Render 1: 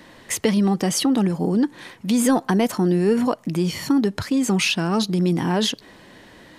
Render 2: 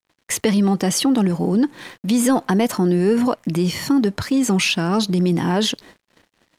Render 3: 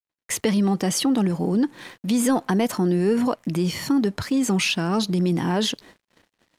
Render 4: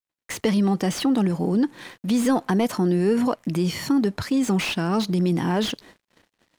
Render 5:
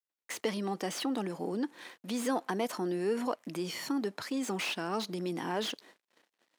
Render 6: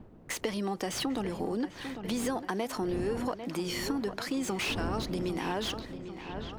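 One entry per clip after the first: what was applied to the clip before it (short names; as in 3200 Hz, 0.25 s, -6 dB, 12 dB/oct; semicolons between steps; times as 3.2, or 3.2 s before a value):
gate -44 dBFS, range -19 dB; in parallel at -1 dB: limiter -17.5 dBFS, peak gain reduction 10 dB; on the sum: crossover distortion -49 dBFS; gain -1.5 dB
gate with hold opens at -47 dBFS; gain -3.5 dB
slew limiter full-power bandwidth 180 Hz
HPF 330 Hz 12 dB/oct; gain -7.5 dB
wind noise 280 Hz -44 dBFS; dark delay 0.797 s, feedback 53%, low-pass 3700 Hz, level -12.5 dB; compressor, threshold -32 dBFS, peak gain reduction 7 dB; gain +4 dB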